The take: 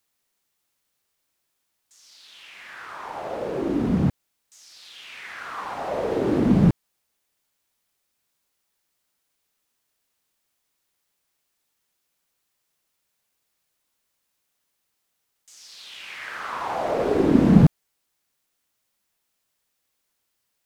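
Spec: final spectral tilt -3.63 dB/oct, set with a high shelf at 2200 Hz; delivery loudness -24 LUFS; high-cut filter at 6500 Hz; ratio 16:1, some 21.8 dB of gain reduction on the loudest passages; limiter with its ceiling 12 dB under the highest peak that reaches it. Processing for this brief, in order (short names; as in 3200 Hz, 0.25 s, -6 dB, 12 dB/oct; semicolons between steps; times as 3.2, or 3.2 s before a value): LPF 6500 Hz; high shelf 2200 Hz -5 dB; compressor 16:1, threshold -30 dBFS; gain +18.5 dB; limiter -15 dBFS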